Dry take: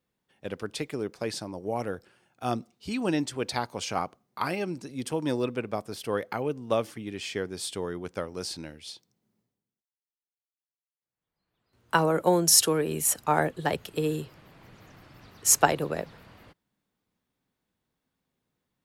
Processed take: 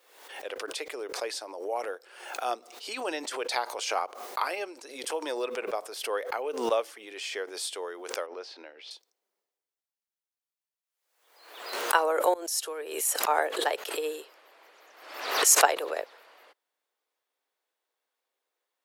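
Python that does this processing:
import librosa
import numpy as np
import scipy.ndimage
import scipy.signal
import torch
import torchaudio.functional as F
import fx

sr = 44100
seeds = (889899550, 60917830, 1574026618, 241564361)

y = fx.air_absorb(x, sr, metres=240.0, at=(8.26, 8.91))
y = fx.edit(y, sr, fx.fade_in_from(start_s=12.34, length_s=1.13, floor_db=-22.5), tone=tone)
y = scipy.signal.sosfilt(scipy.signal.cheby2(4, 50, 170.0, 'highpass', fs=sr, output='sos'), y)
y = fx.pre_swell(y, sr, db_per_s=68.0)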